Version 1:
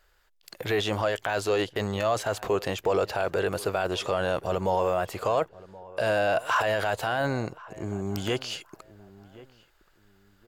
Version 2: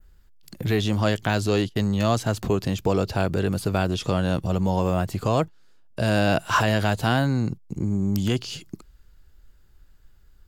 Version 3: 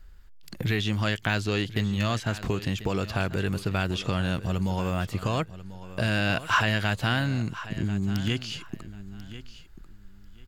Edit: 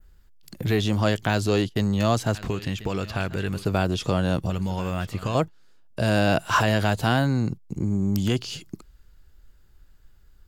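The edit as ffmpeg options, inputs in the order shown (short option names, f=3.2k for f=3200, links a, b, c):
-filter_complex "[2:a]asplit=2[a][b];[1:a]asplit=3[c][d][e];[c]atrim=end=2.352[f];[a]atrim=start=2.348:end=3.652[g];[d]atrim=start=3.648:end=4.502[h];[b]atrim=start=4.498:end=5.352[i];[e]atrim=start=5.348[j];[f][g]acrossfade=d=0.004:c1=hsin:c2=hsin[k];[k][h]acrossfade=d=0.004:c1=hsin:c2=hsin[l];[l][i]acrossfade=d=0.004:c1=hsin:c2=hsin[m];[m][j]acrossfade=d=0.004:c1=hsin:c2=hsin"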